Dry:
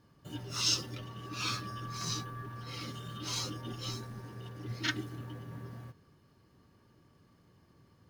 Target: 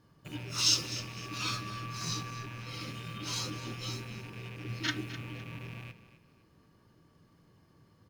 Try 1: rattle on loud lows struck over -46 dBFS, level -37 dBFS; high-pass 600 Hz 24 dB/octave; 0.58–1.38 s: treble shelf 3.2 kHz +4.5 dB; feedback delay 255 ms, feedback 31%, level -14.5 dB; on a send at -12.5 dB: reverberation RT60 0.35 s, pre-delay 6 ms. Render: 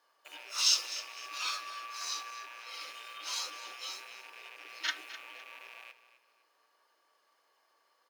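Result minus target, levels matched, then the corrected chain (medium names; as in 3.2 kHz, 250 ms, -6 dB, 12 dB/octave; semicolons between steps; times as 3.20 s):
500 Hz band -9.0 dB
rattle on loud lows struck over -46 dBFS, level -37 dBFS; 0.58–1.38 s: treble shelf 3.2 kHz +4.5 dB; feedback delay 255 ms, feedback 31%, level -14.5 dB; on a send at -12.5 dB: reverberation RT60 0.35 s, pre-delay 6 ms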